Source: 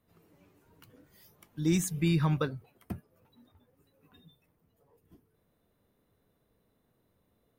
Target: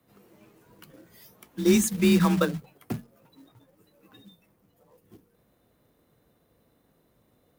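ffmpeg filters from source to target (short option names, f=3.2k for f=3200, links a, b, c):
-af "bandreject=f=50:t=h:w=6,bandreject=f=100:t=h:w=6,bandreject=f=150:t=h:w=6,bandreject=f=200:t=h:w=6,afreqshift=33,acrusher=bits=4:mode=log:mix=0:aa=0.000001,volume=7dB"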